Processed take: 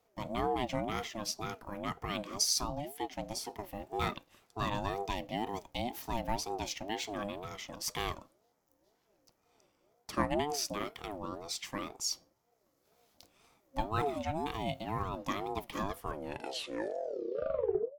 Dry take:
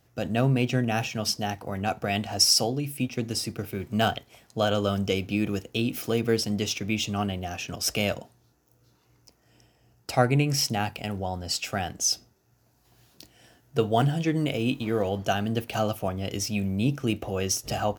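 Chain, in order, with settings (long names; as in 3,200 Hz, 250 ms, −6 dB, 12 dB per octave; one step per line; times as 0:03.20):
turntable brake at the end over 2.21 s
ring modulator whose carrier an LFO sweeps 500 Hz, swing 20%, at 2 Hz
level −7 dB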